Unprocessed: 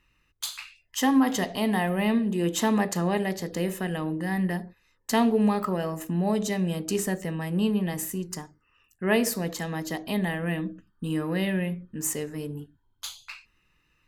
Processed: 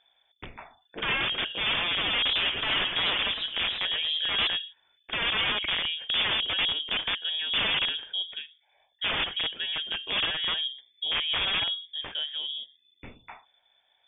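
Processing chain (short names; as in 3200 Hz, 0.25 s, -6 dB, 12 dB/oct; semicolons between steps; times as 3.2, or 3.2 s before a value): bell 2400 Hz -5 dB 0.5 oct; wrapped overs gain 21.5 dB; inverted band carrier 3500 Hz; 2.15–4.48 warbling echo 0.107 s, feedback 31%, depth 134 cents, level -7.5 dB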